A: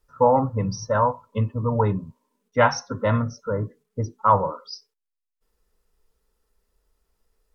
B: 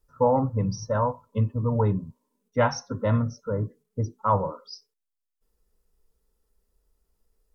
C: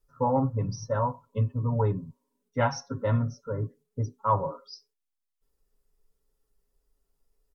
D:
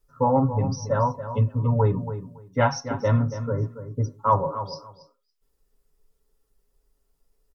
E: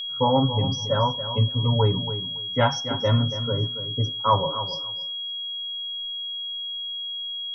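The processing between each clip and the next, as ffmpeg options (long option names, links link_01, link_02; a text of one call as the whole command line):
ffmpeg -i in.wav -af "equalizer=frequency=1900:width=0.34:gain=-7.5" out.wav
ffmpeg -i in.wav -af "aecho=1:1:7.3:0.65,volume=-4.5dB" out.wav
ffmpeg -i in.wav -filter_complex "[0:a]asplit=2[link_01][link_02];[link_02]adelay=280,lowpass=frequency=3000:poles=1,volume=-11dB,asplit=2[link_03][link_04];[link_04]adelay=280,lowpass=frequency=3000:poles=1,volume=0.18[link_05];[link_01][link_03][link_05]amix=inputs=3:normalize=0,volume=4.5dB" out.wav
ffmpeg -i in.wav -af "aeval=exprs='val(0)+0.0355*sin(2*PI*3300*n/s)':channel_layout=same" out.wav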